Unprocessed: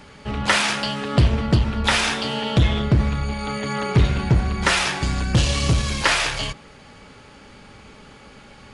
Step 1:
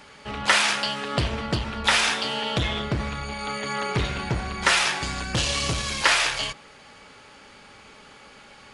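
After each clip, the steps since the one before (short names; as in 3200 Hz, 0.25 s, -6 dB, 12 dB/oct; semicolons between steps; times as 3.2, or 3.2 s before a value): low shelf 330 Hz -12 dB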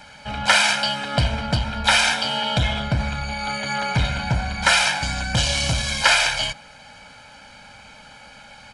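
comb 1.3 ms, depth 89%; gain +1 dB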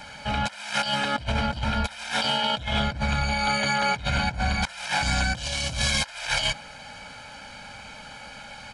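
negative-ratio compressor -25 dBFS, ratio -0.5; gain -1 dB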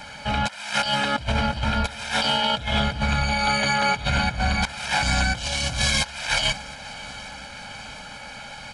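swung echo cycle 0.717 s, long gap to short 3:1, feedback 66%, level -20 dB; gain +2.5 dB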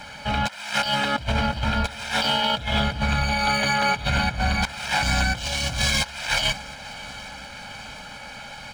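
median filter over 3 samples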